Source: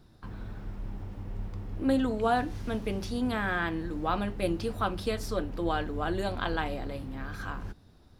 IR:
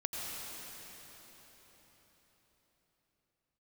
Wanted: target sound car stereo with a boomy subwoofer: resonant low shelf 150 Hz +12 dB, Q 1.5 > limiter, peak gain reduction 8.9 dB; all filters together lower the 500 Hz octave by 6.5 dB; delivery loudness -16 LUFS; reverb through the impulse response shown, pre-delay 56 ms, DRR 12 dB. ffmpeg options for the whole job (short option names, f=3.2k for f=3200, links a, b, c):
-filter_complex "[0:a]equalizer=f=500:t=o:g=-7,asplit=2[a][b];[1:a]atrim=start_sample=2205,adelay=56[c];[b][c]afir=irnorm=-1:irlink=0,volume=-15.5dB[d];[a][d]amix=inputs=2:normalize=0,lowshelf=f=150:t=q:w=1.5:g=12,volume=14.5dB,alimiter=limit=-5.5dB:level=0:latency=1"